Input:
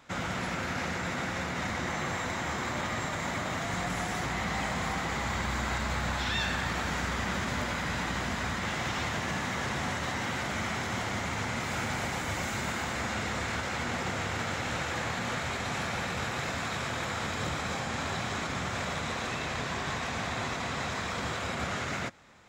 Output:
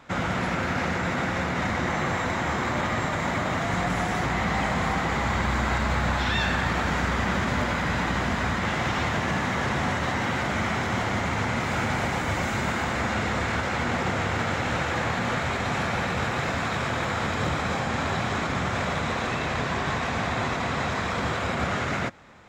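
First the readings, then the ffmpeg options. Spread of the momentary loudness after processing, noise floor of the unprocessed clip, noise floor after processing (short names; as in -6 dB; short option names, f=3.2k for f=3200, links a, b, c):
2 LU, -35 dBFS, -28 dBFS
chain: -af "highshelf=f=3.6k:g=-9.5,volume=7.5dB"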